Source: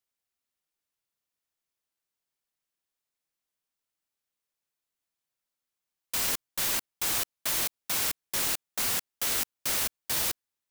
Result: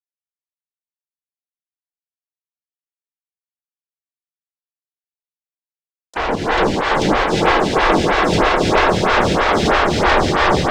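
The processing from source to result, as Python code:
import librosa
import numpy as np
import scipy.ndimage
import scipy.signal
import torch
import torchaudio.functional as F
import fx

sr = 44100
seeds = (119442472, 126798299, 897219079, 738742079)

y = fx.env_lowpass_down(x, sr, base_hz=900.0, full_db=-25.5)
y = fx.high_shelf(y, sr, hz=2700.0, db=11.0)
y = fx.level_steps(y, sr, step_db=10)
y = fx.leveller(y, sr, passes=3)
y = fx.over_compress(y, sr, threshold_db=-35.0, ratio=-0.5)
y = fx.fuzz(y, sr, gain_db=47.0, gate_db=-52.0)
y = fx.air_absorb(y, sr, metres=140.0)
y = fx.echo_swell(y, sr, ms=142, loudest=5, wet_db=-9.0)
y = fx.rev_gated(y, sr, seeds[0], gate_ms=390, shape='rising', drr_db=-4.5)
y = fx.stagger_phaser(y, sr, hz=3.1)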